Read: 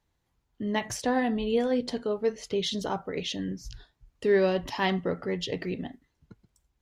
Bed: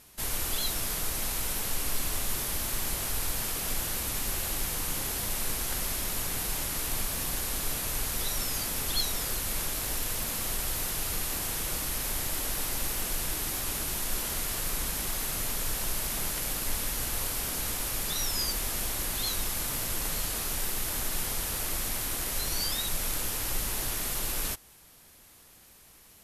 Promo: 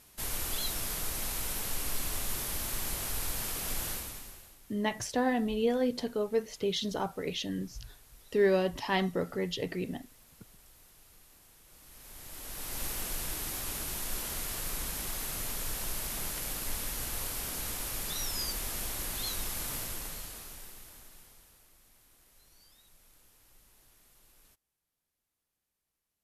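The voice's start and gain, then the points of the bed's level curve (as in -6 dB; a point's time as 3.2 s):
4.10 s, -2.5 dB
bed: 3.91 s -3.5 dB
4.6 s -27 dB
11.64 s -27 dB
12.83 s -4.5 dB
19.76 s -4.5 dB
21.73 s -31 dB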